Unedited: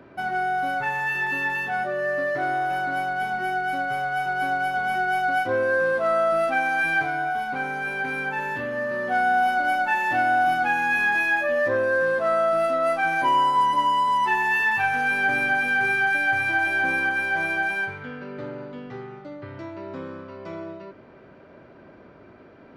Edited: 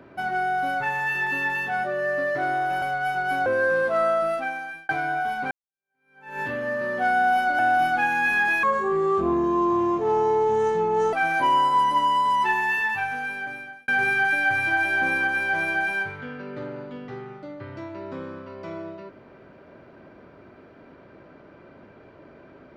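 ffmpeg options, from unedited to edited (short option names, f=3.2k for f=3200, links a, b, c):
-filter_complex "[0:a]asplit=9[a][b][c][d][e][f][g][h][i];[a]atrim=end=2.822[j];[b]atrim=start=3.928:end=4.572[k];[c]atrim=start=5.558:end=6.99,asetpts=PTS-STARTPTS,afade=t=out:st=0.592:d=0.84[l];[d]atrim=start=6.99:end=7.61,asetpts=PTS-STARTPTS,afade=t=in:d=0.004:c=hsin,afade=t=out:st=0.616:d=0.004:c=hsin[m];[e]atrim=start=7.61:end=9.692,asetpts=PTS-STARTPTS,afade=t=in:d=0.89:c=exp[n];[f]atrim=start=10.258:end=11.304[o];[g]atrim=start=11.3:end=12.95,asetpts=PTS-STARTPTS,asetrate=29106,aresample=44100[p];[h]atrim=start=12.946:end=15.7,asetpts=PTS-STARTPTS,afade=t=out:st=1.314:d=1.44[q];[i]atrim=start=15.7,asetpts=PTS-STARTPTS,afade=t=in:d=0.004:c=hsin[r];[j][k]acrossfade=d=0.004:c1=hsin:c2=hsin[s];[l][m][n]concat=n=3:v=0:a=1[t];[s][t]acrossfade=d=0.004:c1=hsin:c2=hsin[u];[u][o]acrossfade=d=0.004:c1=hsin:c2=hsin[v];[v][p]acrossfade=d=0.004:c1=hsin:c2=hsin[w];[q][r]concat=n=2:v=0:a=1[x];[w][x]acrossfade=d=0.004:c1=hsin:c2=hsin"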